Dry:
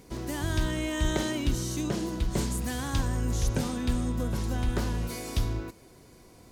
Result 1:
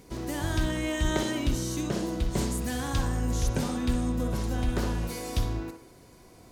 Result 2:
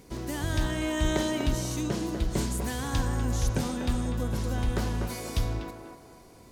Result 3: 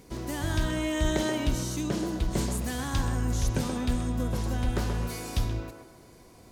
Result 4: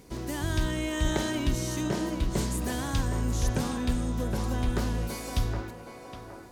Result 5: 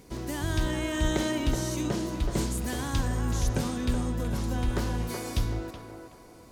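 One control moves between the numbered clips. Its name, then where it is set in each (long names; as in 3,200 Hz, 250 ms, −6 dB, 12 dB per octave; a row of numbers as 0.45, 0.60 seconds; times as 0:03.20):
feedback echo with a band-pass in the loop, delay time: 61, 245, 129, 767, 374 milliseconds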